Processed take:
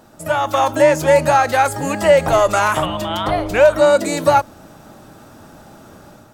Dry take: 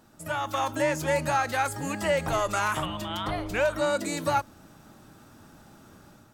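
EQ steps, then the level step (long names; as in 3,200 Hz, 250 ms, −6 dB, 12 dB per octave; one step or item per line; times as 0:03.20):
parametric band 610 Hz +6.5 dB 1.1 octaves
+8.5 dB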